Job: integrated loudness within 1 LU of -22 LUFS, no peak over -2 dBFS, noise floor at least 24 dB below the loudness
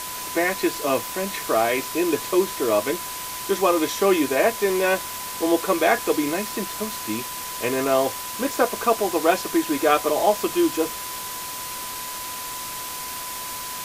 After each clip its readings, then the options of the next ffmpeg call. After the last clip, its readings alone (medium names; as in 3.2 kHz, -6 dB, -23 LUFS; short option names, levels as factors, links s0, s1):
steady tone 1 kHz; tone level -35 dBFS; noise floor -32 dBFS; noise floor target -47 dBFS; loudness -23.0 LUFS; peak level -4.0 dBFS; loudness target -22.0 LUFS
-> -af "bandreject=f=1000:w=30"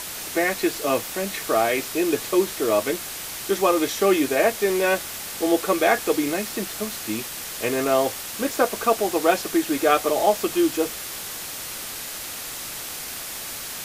steady tone not found; noise floor -34 dBFS; noise floor target -48 dBFS
-> -af "afftdn=nr=14:nf=-34"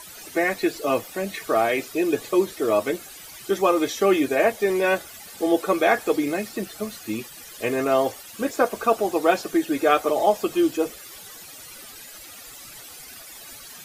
noise floor -43 dBFS; noise floor target -47 dBFS
-> -af "afftdn=nr=6:nf=-43"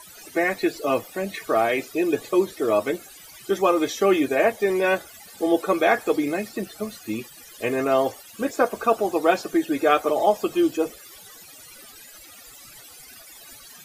noise floor -46 dBFS; noise floor target -47 dBFS
-> -af "afftdn=nr=6:nf=-46"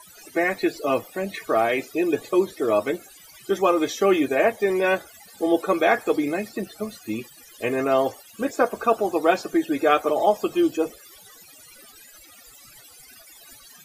noise floor -49 dBFS; loudness -23.5 LUFS; peak level -4.5 dBFS; loudness target -22.0 LUFS
-> -af "volume=1.19"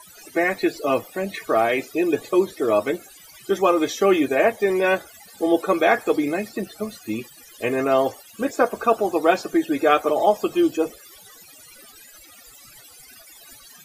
loudness -21.5 LUFS; peak level -3.0 dBFS; noise floor -47 dBFS